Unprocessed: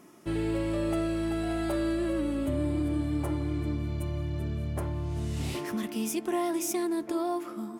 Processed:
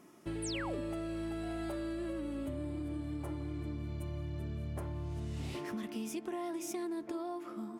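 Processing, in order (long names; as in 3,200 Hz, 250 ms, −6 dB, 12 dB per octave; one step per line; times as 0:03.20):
high-shelf EQ 7,700 Hz −2 dB, from 0:05.20 −9 dB
downward compressor, threshold −31 dBFS, peak gain reduction 6.5 dB
0:00.42–0:00.81: sound drawn into the spectrogram fall 220–11,000 Hz −37 dBFS
level −4.5 dB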